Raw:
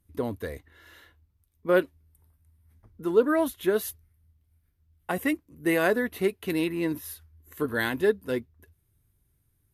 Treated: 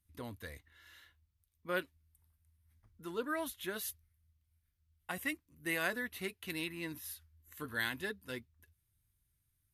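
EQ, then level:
guitar amp tone stack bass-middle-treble 5-5-5
high-shelf EQ 8,900 Hz −6 dB
notch filter 420 Hz, Q 12
+4.0 dB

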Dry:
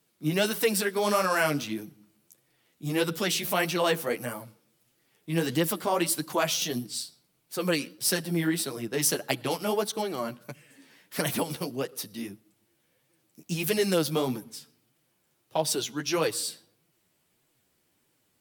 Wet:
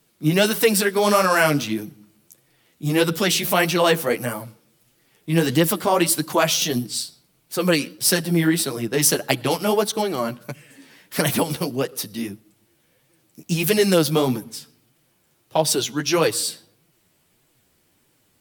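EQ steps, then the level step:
low-shelf EQ 82 Hz +7.5 dB
+7.5 dB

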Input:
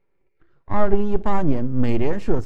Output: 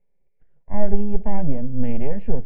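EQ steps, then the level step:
low-pass filter 2,400 Hz 24 dB per octave
low-shelf EQ 150 Hz +7 dB
phaser with its sweep stopped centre 330 Hz, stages 6
−3.5 dB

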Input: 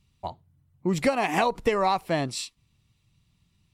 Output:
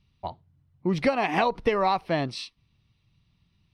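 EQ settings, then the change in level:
Savitzky-Golay smoothing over 15 samples
0.0 dB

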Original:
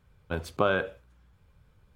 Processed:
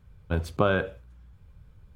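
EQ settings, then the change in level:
low-shelf EQ 200 Hz +10.5 dB
0.0 dB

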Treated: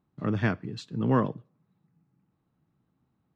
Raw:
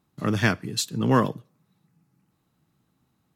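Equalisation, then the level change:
head-to-tape spacing loss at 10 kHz 30 dB
−2.5 dB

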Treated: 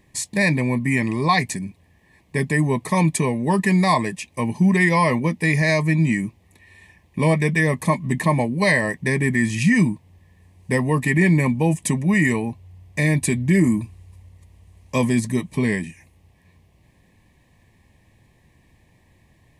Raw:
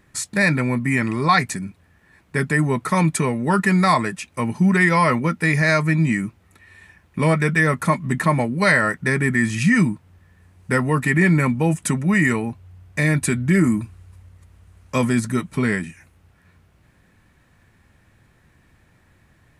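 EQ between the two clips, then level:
Butterworth band-reject 1,400 Hz, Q 2.1
0.0 dB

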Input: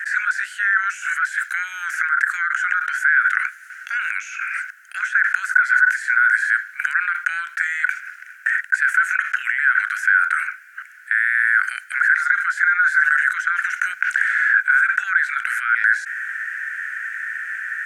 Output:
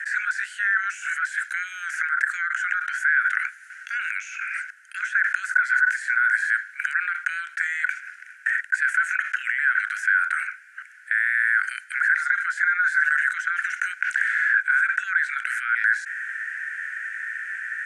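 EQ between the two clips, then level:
high-pass filter 1,400 Hz 24 dB per octave
Chebyshev low-pass filter 9,900 Hz, order 3
−2.5 dB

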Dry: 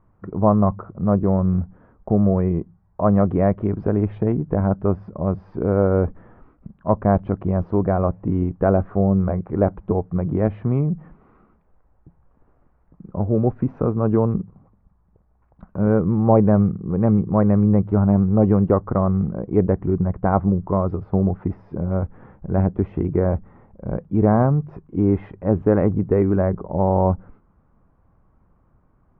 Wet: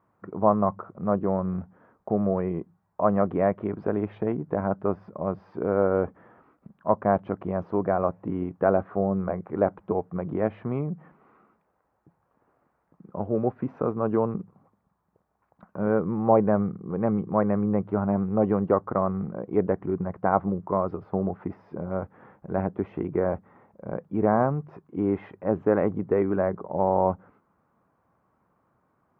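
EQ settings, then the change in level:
high-pass filter 120 Hz 12 dB per octave
low-shelf EQ 340 Hz −10.5 dB
0.0 dB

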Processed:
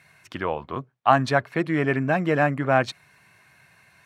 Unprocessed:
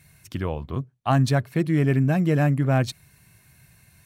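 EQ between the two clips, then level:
resonant band-pass 1,200 Hz, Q 0.72
+8.0 dB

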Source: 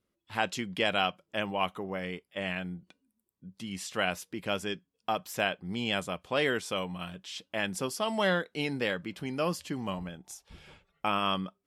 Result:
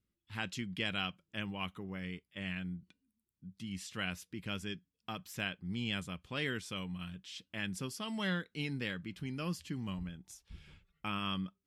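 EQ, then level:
guitar amp tone stack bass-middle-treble 6-0-2
high-shelf EQ 3,500 Hz −9 dB
+14.5 dB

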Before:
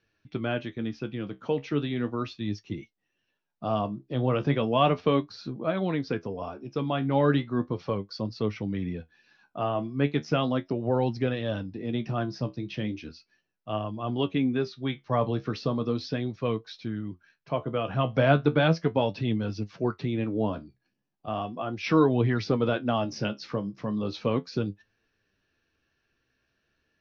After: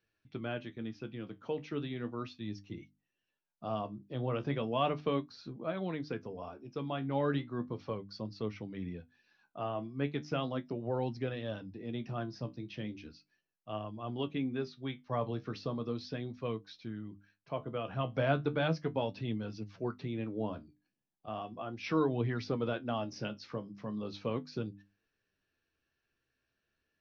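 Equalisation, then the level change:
mains-hum notches 50/100/150/200/250/300 Hz
−8.5 dB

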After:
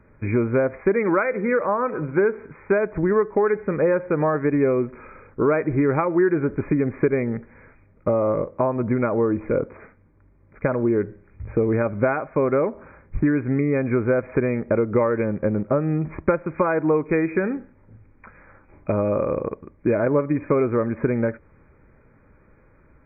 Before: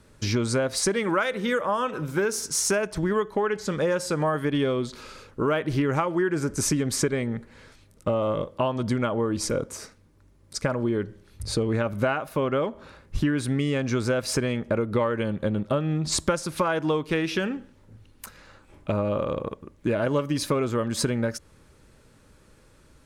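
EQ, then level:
dynamic equaliser 400 Hz, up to +5 dB, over −38 dBFS, Q 1.2
linear-phase brick-wall low-pass 2,500 Hz
+1.5 dB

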